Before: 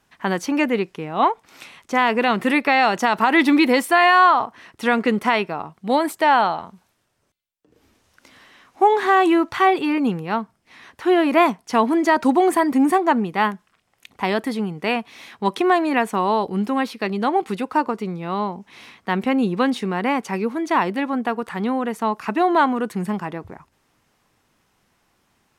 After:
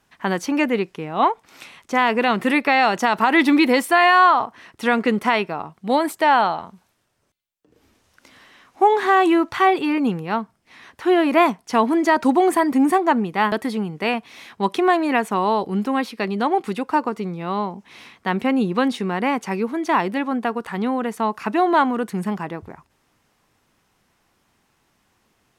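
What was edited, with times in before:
0:13.52–0:14.34: remove

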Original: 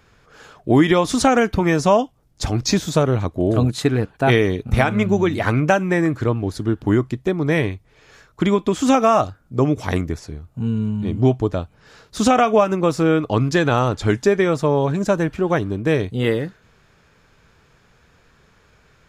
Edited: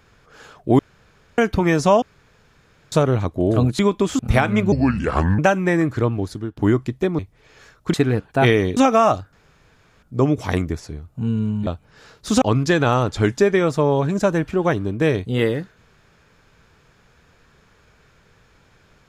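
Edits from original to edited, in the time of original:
0:00.79–0:01.38: fill with room tone
0:02.02–0:02.92: fill with room tone
0:03.79–0:04.62: swap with 0:08.46–0:08.86
0:05.15–0:05.63: play speed 72%
0:06.42–0:06.81: fade out, to −16 dB
0:07.43–0:07.71: remove
0:09.42: splice in room tone 0.70 s
0:11.06–0:11.56: remove
0:12.31–0:13.27: remove

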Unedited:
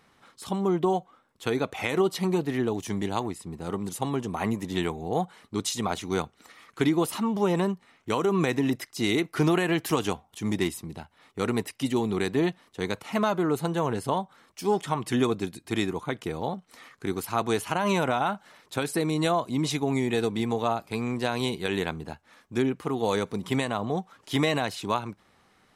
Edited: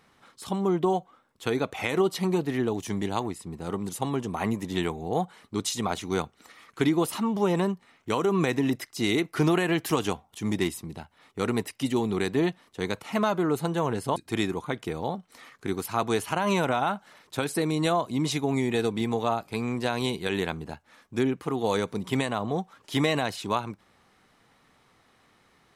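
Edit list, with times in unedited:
0:14.16–0:15.55: remove

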